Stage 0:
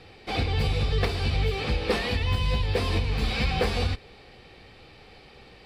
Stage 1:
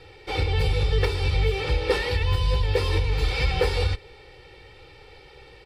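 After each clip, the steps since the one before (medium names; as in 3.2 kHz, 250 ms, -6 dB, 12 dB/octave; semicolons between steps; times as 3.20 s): comb 2.2 ms, depth 94%; trim -1.5 dB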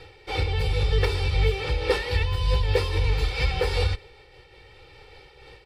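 peaking EQ 240 Hz -3.5 dB 1.1 oct; random flutter of the level, depth 65%; trim +3.5 dB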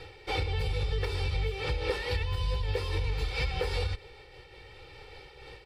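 compression, threshold -27 dBFS, peak gain reduction 10.5 dB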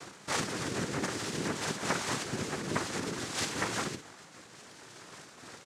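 doubling 50 ms -9 dB; noise-vocoded speech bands 3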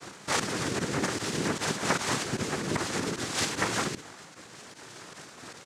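volume shaper 152 bpm, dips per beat 1, -14 dB, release 60 ms; trim +4.5 dB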